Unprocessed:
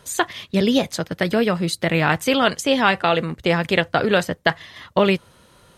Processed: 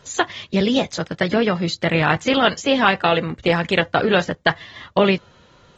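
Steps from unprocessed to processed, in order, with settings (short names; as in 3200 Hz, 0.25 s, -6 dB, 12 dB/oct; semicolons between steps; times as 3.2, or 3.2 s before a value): AAC 24 kbps 48000 Hz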